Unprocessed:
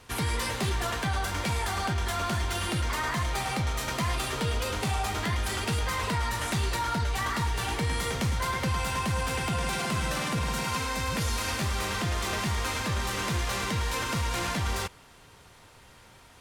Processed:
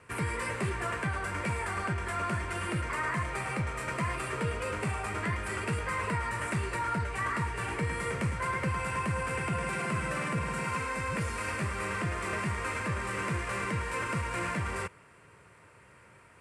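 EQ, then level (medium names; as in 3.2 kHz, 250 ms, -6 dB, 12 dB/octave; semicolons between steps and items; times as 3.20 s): cabinet simulation 100–8700 Hz, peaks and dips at 250 Hz -7 dB, 780 Hz -9 dB, 3.7 kHz -5 dB, 6.8 kHz -9 dB; high-order bell 4.3 kHz -11.5 dB 1.2 oct; 0.0 dB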